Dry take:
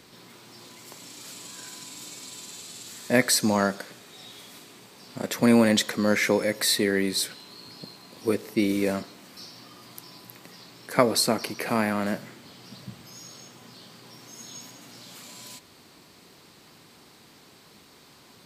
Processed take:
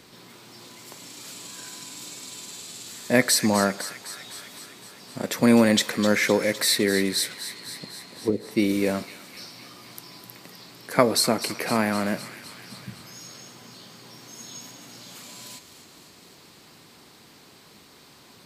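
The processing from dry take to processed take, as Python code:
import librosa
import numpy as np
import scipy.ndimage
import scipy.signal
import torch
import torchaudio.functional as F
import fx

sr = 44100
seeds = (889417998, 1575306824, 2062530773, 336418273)

y = fx.env_lowpass_down(x, sr, base_hz=470.0, full_db=-20.5, at=(7.46, 8.51))
y = fx.echo_wet_highpass(y, sr, ms=255, feedback_pct=68, hz=1700.0, wet_db=-11)
y = y * 10.0 ** (1.5 / 20.0)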